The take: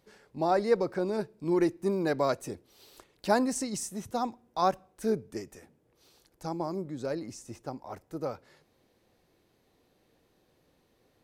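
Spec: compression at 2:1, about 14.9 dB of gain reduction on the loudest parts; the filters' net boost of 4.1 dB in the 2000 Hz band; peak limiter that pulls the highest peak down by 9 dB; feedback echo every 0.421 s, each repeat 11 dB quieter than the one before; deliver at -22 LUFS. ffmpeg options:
-af "equalizer=f=2k:t=o:g=5.5,acompressor=threshold=-47dB:ratio=2,alimiter=level_in=10dB:limit=-24dB:level=0:latency=1,volume=-10dB,aecho=1:1:421|842|1263:0.282|0.0789|0.0221,volume=23.5dB"

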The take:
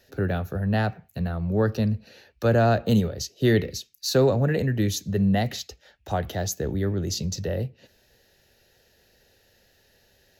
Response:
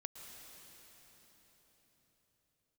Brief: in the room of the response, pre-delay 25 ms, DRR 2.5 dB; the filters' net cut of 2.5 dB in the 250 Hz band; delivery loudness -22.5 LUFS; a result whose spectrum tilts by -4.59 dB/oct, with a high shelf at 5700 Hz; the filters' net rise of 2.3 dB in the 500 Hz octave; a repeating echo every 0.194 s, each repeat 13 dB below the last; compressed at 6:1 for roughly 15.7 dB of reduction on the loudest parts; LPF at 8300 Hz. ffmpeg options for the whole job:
-filter_complex "[0:a]lowpass=8.3k,equalizer=f=250:t=o:g=-4.5,equalizer=f=500:t=o:g=4,highshelf=f=5.7k:g=8.5,acompressor=threshold=-31dB:ratio=6,aecho=1:1:194|388|582:0.224|0.0493|0.0108,asplit=2[a][b];[1:a]atrim=start_sample=2205,adelay=25[c];[b][c]afir=irnorm=-1:irlink=0,volume=1dB[d];[a][d]amix=inputs=2:normalize=0,volume=10.5dB"

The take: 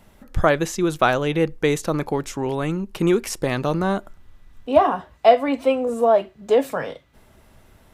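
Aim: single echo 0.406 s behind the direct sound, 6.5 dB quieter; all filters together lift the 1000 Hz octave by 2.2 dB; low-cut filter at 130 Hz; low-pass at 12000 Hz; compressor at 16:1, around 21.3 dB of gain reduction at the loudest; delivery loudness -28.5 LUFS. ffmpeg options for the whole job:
-af "highpass=130,lowpass=12k,equalizer=f=1k:t=o:g=3.5,acompressor=threshold=-28dB:ratio=16,aecho=1:1:406:0.473,volume=5dB"

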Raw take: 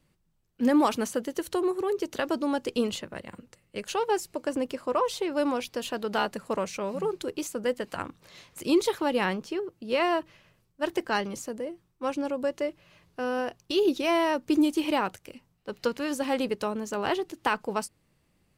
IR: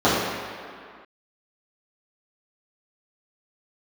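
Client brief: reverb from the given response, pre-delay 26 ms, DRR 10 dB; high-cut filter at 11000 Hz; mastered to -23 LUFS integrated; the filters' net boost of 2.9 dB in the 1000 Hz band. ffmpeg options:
-filter_complex "[0:a]lowpass=11k,equalizer=f=1k:t=o:g=3.5,asplit=2[a][b];[1:a]atrim=start_sample=2205,adelay=26[c];[b][c]afir=irnorm=-1:irlink=0,volume=-33.5dB[d];[a][d]amix=inputs=2:normalize=0,volume=4.5dB"

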